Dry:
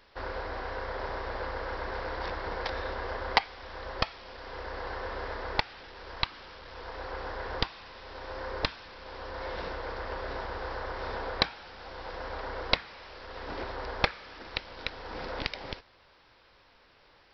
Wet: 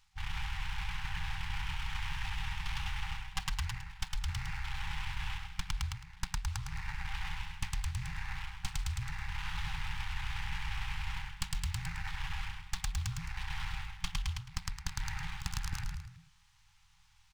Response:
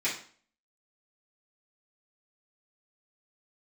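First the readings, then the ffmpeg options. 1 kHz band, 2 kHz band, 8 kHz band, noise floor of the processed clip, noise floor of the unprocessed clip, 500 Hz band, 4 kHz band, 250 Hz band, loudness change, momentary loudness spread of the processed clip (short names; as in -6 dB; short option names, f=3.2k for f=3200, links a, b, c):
-9.5 dB, -5.0 dB, n/a, -64 dBFS, -61 dBFS, under -40 dB, -5.5 dB, -7.0 dB, -4.5 dB, 4 LU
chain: -filter_complex "[0:a]afwtdn=0.00891,acrossover=split=620[a][b];[b]aeval=exprs='abs(val(0))':c=same[c];[a][c]amix=inputs=2:normalize=0,asplit=6[d][e][f][g][h][i];[e]adelay=108,afreqshift=-42,volume=-3.5dB[j];[f]adelay=216,afreqshift=-84,volume=-11.5dB[k];[g]adelay=324,afreqshift=-126,volume=-19.4dB[l];[h]adelay=432,afreqshift=-168,volume=-27.4dB[m];[i]adelay=540,afreqshift=-210,volume=-35.3dB[n];[d][j][k][l][m][n]amix=inputs=6:normalize=0,afftfilt=real='re*(1-between(b*sr/4096,180,770))':imag='im*(1-between(b*sr/4096,180,770))':win_size=4096:overlap=0.75,areverse,acompressor=threshold=-44dB:ratio=10,areverse,volume=12dB"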